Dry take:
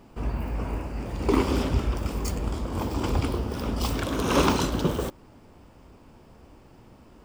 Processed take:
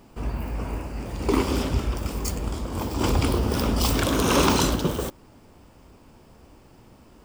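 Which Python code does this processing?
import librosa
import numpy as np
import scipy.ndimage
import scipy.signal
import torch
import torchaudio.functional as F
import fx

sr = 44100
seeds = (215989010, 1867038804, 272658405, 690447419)

y = fx.high_shelf(x, sr, hz=4600.0, db=6.5)
y = fx.env_flatten(y, sr, amount_pct=50, at=(2.99, 4.74), fade=0.02)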